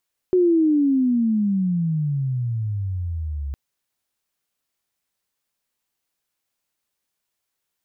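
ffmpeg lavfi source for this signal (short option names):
-f lavfi -i "aevalsrc='pow(10,(-13-12*t/3.21)/20)*sin(2*PI*371*3.21/(-29.5*log(2)/12)*(exp(-29.5*log(2)/12*t/3.21)-1))':d=3.21:s=44100"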